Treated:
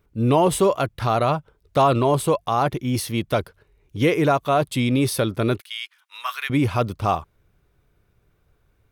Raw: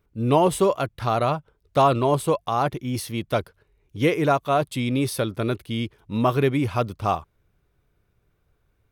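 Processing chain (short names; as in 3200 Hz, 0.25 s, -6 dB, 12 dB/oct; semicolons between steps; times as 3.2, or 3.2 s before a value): 5.6–6.5 HPF 1300 Hz 24 dB/oct; in parallel at +3 dB: limiter -16.5 dBFS, peak gain reduction 10 dB; on the sum: gain -3.5 dB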